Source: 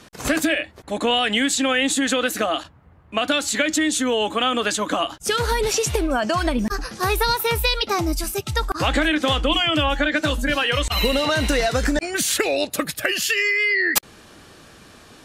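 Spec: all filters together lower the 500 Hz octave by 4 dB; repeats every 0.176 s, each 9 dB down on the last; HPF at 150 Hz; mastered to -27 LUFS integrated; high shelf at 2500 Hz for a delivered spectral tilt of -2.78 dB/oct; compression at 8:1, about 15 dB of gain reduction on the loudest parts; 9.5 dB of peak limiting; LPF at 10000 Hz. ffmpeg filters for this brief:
-af "highpass=150,lowpass=10k,equalizer=f=500:t=o:g=-4.5,highshelf=f=2.5k:g=-5.5,acompressor=threshold=-35dB:ratio=8,alimiter=level_in=7dB:limit=-24dB:level=0:latency=1,volume=-7dB,aecho=1:1:176|352|528|704:0.355|0.124|0.0435|0.0152,volume=12.5dB"

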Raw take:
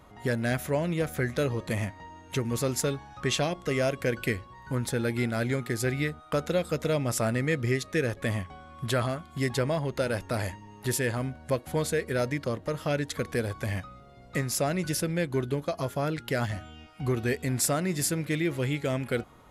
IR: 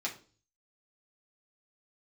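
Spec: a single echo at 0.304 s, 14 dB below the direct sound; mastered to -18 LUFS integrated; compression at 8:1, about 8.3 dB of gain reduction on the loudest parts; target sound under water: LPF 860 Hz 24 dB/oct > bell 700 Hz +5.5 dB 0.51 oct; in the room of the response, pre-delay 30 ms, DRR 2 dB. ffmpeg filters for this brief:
-filter_complex "[0:a]acompressor=threshold=-31dB:ratio=8,aecho=1:1:304:0.2,asplit=2[a][b];[1:a]atrim=start_sample=2205,adelay=30[c];[b][c]afir=irnorm=-1:irlink=0,volume=-5.5dB[d];[a][d]amix=inputs=2:normalize=0,lowpass=f=860:w=0.5412,lowpass=f=860:w=1.3066,equalizer=f=700:t=o:w=0.51:g=5.5,volume=17dB"

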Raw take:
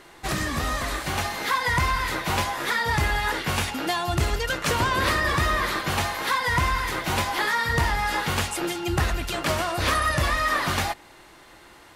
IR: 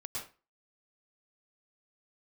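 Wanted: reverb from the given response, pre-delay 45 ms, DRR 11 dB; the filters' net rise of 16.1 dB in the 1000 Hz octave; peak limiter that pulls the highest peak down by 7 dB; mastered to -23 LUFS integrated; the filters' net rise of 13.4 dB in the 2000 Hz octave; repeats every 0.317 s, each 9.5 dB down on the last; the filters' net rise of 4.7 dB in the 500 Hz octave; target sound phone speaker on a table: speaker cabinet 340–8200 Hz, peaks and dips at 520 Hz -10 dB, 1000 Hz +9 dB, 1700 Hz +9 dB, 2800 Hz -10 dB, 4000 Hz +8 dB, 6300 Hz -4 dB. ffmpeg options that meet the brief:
-filter_complex "[0:a]equalizer=f=500:t=o:g=8,equalizer=f=1k:t=o:g=8,equalizer=f=2k:t=o:g=6,alimiter=limit=-11dB:level=0:latency=1,aecho=1:1:317|634|951|1268:0.335|0.111|0.0365|0.012,asplit=2[a][b];[1:a]atrim=start_sample=2205,adelay=45[c];[b][c]afir=irnorm=-1:irlink=0,volume=-11.5dB[d];[a][d]amix=inputs=2:normalize=0,highpass=f=340:w=0.5412,highpass=f=340:w=1.3066,equalizer=f=520:t=q:w=4:g=-10,equalizer=f=1k:t=q:w=4:g=9,equalizer=f=1.7k:t=q:w=4:g=9,equalizer=f=2.8k:t=q:w=4:g=-10,equalizer=f=4k:t=q:w=4:g=8,equalizer=f=6.3k:t=q:w=4:g=-4,lowpass=f=8.2k:w=0.5412,lowpass=f=8.2k:w=1.3066,volume=-9.5dB"

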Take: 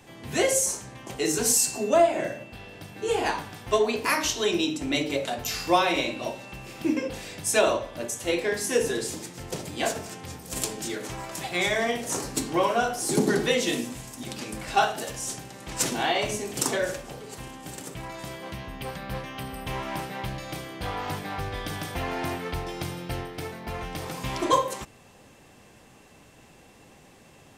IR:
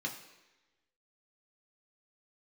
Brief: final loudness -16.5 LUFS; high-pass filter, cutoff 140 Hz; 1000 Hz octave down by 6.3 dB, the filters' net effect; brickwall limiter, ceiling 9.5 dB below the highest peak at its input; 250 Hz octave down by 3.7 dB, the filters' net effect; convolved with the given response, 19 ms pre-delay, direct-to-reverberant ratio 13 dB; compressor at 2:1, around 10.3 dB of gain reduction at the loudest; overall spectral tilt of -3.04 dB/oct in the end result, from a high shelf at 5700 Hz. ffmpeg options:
-filter_complex "[0:a]highpass=140,equalizer=f=250:t=o:g=-4,equalizer=f=1k:t=o:g=-8.5,highshelf=f=5.7k:g=-4.5,acompressor=threshold=-39dB:ratio=2,alimiter=level_in=4.5dB:limit=-24dB:level=0:latency=1,volume=-4.5dB,asplit=2[a][b];[1:a]atrim=start_sample=2205,adelay=19[c];[b][c]afir=irnorm=-1:irlink=0,volume=-15dB[d];[a][d]amix=inputs=2:normalize=0,volume=23dB"

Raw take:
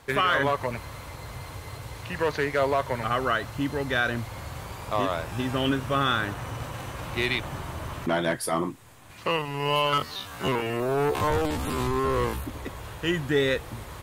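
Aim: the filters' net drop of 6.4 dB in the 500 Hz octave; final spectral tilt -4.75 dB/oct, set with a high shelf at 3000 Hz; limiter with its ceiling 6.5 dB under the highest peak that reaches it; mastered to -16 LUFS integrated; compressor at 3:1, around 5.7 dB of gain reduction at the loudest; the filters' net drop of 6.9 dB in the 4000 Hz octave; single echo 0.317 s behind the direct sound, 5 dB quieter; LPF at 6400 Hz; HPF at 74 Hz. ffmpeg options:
-af "highpass=74,lowpass=6.4k,equalizer=f=500:t=o:g=-8,highshelf=f=3k:g=-4.5,equalizer=f=4k:t=o:g=-6,acompressor=threshold=-30dB:ratio=3,alimiter=level_in=1dB:limit=-24dB:level=0:latency=1,volume=-1dB,aecho=1:1:317:0.562,volume=19.5dB"

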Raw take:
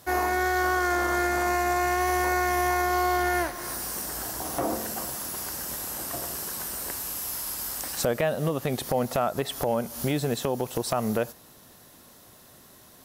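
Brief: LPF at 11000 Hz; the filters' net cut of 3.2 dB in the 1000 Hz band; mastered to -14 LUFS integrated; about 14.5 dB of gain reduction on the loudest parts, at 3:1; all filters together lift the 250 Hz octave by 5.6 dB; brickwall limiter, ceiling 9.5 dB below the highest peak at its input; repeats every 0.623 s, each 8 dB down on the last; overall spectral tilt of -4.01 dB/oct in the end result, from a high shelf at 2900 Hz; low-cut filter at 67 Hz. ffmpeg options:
-af "highpass=67,lowpass=11k,equalizer=f=250:t=o:g=8.5,equalizer=f=1k:t=o:g=-5.5,highshelf=f=2.9k:g=-5,acompressor=threshold=-39dB:ratio=3,alimiter=level_in=7dB:limit=-24dB:level=0:latency=1,volume=-7dB,aecho=1:1:623|1246|1869|2492|3115:0.398|0.159|0.0637|0.0255|0.0102,volume=26.5dB"

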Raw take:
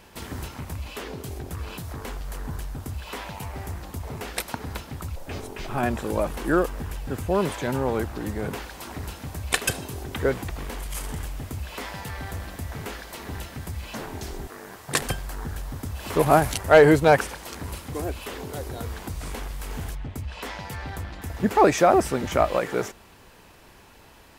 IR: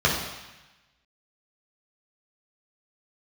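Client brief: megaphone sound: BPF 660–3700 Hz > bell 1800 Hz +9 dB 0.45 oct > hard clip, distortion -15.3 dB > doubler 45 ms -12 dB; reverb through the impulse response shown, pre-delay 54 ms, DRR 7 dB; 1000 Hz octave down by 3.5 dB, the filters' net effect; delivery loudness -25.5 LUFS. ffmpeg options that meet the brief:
-filter_complex "[0:a]equalizer=f=1k:t=o:g=-4,asplit=2[a][b];[1:a]atrim=start_sample=2205,adelay=54[c];[b][c]afir=irnorm=-1:irlink=0,volume=-24dB[d];[a][d]amix=inputs=2:normalize=0,highpass=660,lowpass=3.7k,equalizer=f=1.8k:t=o:w=0.45:g=9,asoftclip=type=hard:threshold=-13dB,asplit=2[e][f];[f]adelay=45,volume=-12dB[g];[e][g]amix=inputs=2:normalize=0,volume=3.5dB"

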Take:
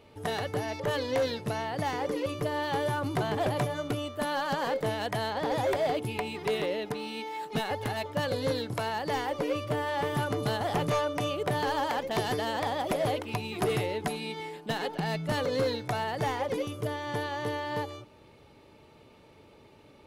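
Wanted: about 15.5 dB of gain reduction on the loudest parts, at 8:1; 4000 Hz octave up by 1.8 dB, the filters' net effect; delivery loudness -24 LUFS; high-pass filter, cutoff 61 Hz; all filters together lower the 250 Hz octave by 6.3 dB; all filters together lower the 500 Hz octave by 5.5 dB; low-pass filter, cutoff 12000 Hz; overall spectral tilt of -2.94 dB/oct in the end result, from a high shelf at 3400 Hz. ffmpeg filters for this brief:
-af "highpass=61,lowpass=12k,equalizer=f=250:t=o:g=-7,equalizer=f=500:t=o:g=-5,highshelf=f=3.4k:g=-8.5,equalizer=f=4k:t=o:g=8,acompressor=threshold=-45dB:ratio=8,volume=23.5dB"

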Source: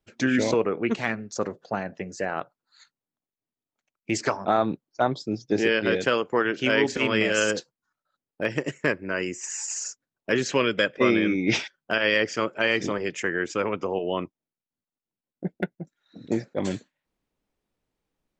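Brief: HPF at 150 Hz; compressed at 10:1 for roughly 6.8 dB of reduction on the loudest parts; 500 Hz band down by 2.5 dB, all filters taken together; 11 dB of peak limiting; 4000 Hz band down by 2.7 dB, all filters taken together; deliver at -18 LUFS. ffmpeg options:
-af "highpass=150,equalizer=f=500:t=o:g=-3,equalizer=f=4k:t=o:g=-4,acompressor=threshold=-25dB:ratio=10,volume=17.5dB,alimiter=limit=-6dB:level=0:latency=1"

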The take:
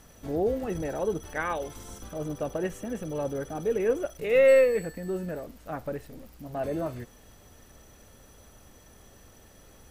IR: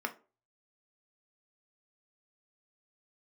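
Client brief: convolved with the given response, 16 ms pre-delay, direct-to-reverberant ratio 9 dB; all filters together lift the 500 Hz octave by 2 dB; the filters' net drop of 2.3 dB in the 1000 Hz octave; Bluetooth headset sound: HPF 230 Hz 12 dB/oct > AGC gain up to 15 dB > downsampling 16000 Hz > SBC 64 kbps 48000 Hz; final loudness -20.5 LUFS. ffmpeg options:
-filter_complex "[0:a]equalizer=f=500:t=o:g=3.5,equalizer=f=1k:t=o:g=-5,asplit=2[a][b];[1:a]atrim=start_sample=2205,adelay=16[c];[b][c]afir=irnorm=-1:irlink=0,volume=-13.5dB[d];[a][d]amix=inputs=2:normalize=0,highpass=230,dynaudnorm=m=15dB,aresample=16000,aresample=44100,volume=7dB" -ar 48000 -c:a sbc -b:a 64k

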